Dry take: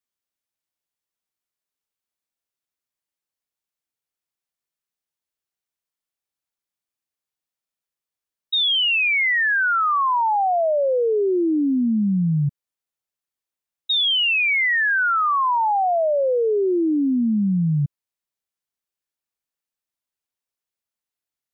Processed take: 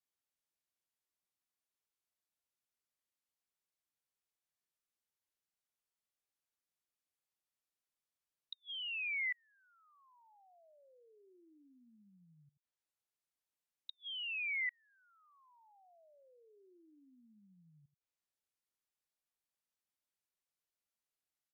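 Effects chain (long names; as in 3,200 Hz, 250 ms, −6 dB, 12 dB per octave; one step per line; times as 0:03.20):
single-tap delay 83 ms −19 dB
treble cut that deepens with the level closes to 1,100 Hz
gate with flip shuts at −26 dBFS, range −41 dB
level −5.5 dB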